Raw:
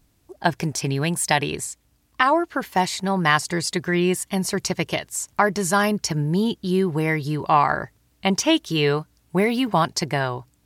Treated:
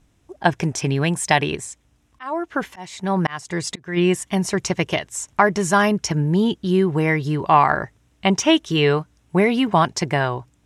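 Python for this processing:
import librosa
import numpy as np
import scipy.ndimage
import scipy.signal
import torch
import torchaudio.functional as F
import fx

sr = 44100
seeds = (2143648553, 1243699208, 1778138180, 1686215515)

y = fx.auto_swell(x, sr, attack_ms=428.0, at=(1.55, 3.96), fade=0.02)
y = scipy.signal.sosfilt(scipy.signal.butter(2, 7500.0, 'lowpass', fs=sr, output='sos'), y)
y = fx.peak_eq(y, sr, hz=4500.0, db=-10.0, octaves=0.28)
y = F.gain(torch.from_numpy(y), 3.0).numpy()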